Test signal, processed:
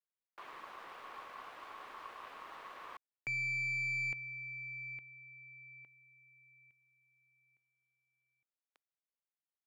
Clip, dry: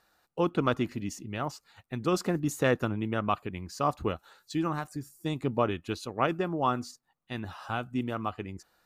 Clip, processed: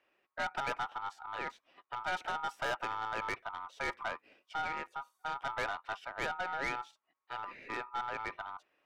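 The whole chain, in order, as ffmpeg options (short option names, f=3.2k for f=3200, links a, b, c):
-filter_complex "[0:a]aeval=exprs='val(0)*sin(2*PI*1100*n/s)':c=same,acrossover=split=310 3200:gain=0.158 1 0.0891[a][b][c];[a][b][c]amix=inputs=3:normalize=0,aeval=exprs='(tanh(31.6*val(0)+0.2)-tanh(0.2))/31.6':c=same"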